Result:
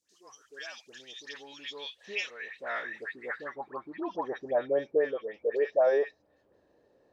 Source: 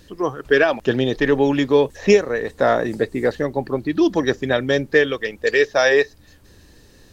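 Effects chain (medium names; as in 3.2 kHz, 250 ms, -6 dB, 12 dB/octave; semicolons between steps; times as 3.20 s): phase dispersion highs, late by 97 ms, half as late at 1.4 kHz; word length cut 12-bit, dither triangular; band-pass sweep 6.3 kHz -> 600 Hz, 1.01–4.76 s; trim -4.5 dB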